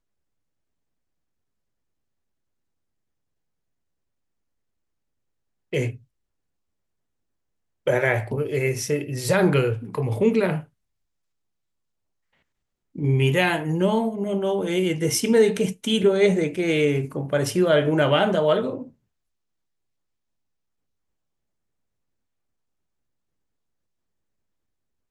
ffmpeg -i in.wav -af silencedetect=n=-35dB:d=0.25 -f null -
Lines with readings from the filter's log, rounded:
silence_start: 0.00
silence_end: 5.73 | silence_duration: 5.73
silence_start: 5.96
silence_end: 7.87 | silence_duration: 1.91
silence_start: 10.63
silence_end: 12.96 | silence_duration: 2.32
silence_start: 18.87
silence_end: 25.11 | silence_duration: 6.24